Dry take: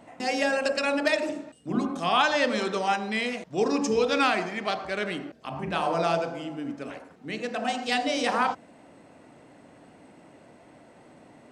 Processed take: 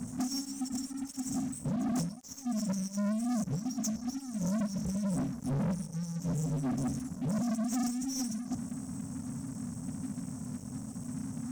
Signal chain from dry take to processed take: high-pass 51 Hz 24 dB/octave; compressor with a negative ratio -34 dBFS, ratio -1; FFT band-reject 270–5400 Hz; waveshaping leveller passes 5; trim -5 dB

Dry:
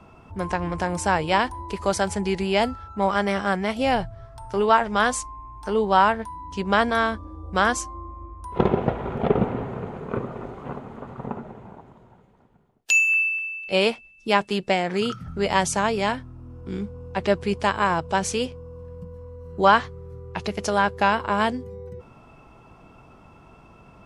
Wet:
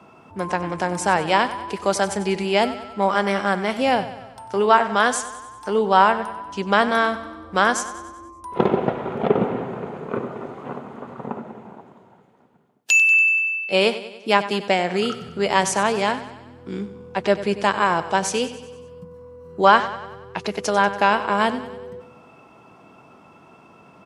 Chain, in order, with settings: high-pass 180 Hz 12 dB/octave; on a send: feedback delay 95 ms, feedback 56%, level -14 dB; on the sum: trim +2.5 dB

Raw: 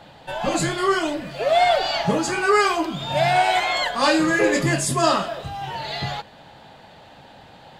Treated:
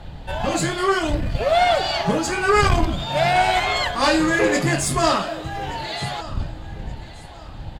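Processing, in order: wind noise 86 Hz -29 dBFS; feedback delay 1174 ms, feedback 31%, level -18 dB; valve stage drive 9 dB, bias 0.55; trim +3 dB

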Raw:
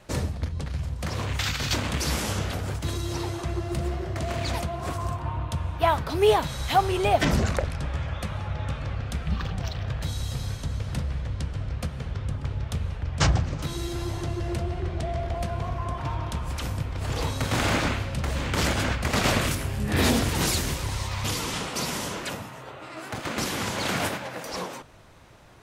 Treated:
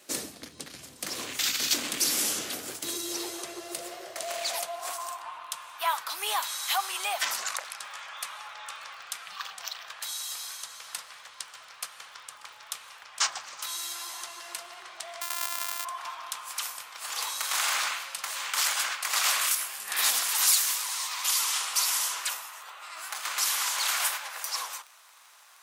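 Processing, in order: 15.21–15.85 s: sorted samples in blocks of 128 samples; band-stop 930 Hz, Q 19; in parallel at -2 dB: peak limiter -18 dBFS, peak gain reduction 9.5 dB; on the sum: pre-emphasis filter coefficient 0.9; crackle 33 per s -43 dBFS; high-pass sweep 290 Hz -> 1 kHz, 2.57–5.51 s; trim +3 dB

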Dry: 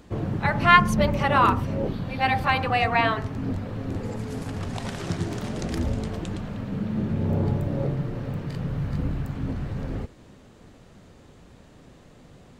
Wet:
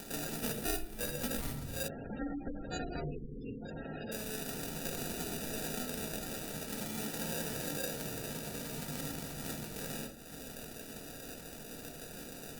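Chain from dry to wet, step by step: octave divider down 1 oct, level -1 dB; upward compressor, threshold -27 dBFS; frequency weighting A; sample-and-hold 41×; 3.05–3.60 s: spectral selection erased 550–2100 Hz; simulated room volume 690 m³, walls furnished, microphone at 1.7 m; compression 5:1, threshold -31 dBFS, peak gain reduction 22.5 dB; 1.88–4.12 s: spectral gate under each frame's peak -20 dB strong; pre-emphasis filter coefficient 0.8; trim +8 dB; Opus 48 kbps 48 kHz

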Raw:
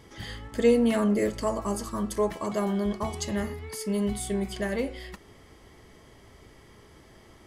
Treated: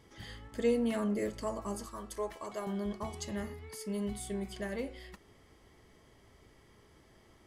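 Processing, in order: 1.86–2.67 s: peaking EQ 170 Hz -12.5 dB 1.4 oct; trim -8.5 dB

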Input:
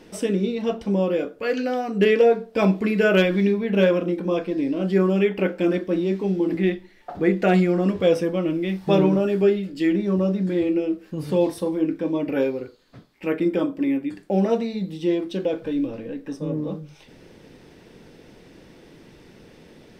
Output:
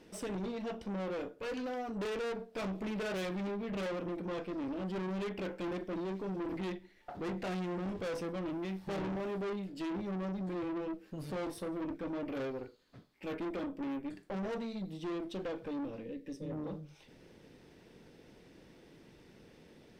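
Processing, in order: valve stage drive 27 dB, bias 0.5; time-frequency box 16.04–16.51 s, 600–1700 Hz -13 dB; trim -8 dB

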